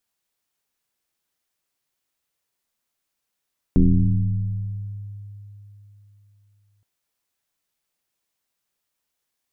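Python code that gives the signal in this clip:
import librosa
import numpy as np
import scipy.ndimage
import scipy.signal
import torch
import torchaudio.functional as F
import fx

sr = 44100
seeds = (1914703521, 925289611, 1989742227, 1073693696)

y = fx.fm2(sr, length_s=3.07, level_db=-10.0, carrier_hz=102.0, ratio=0.83, index=2.3, index_s=2.83, decay_s=3.54, shape='exponential')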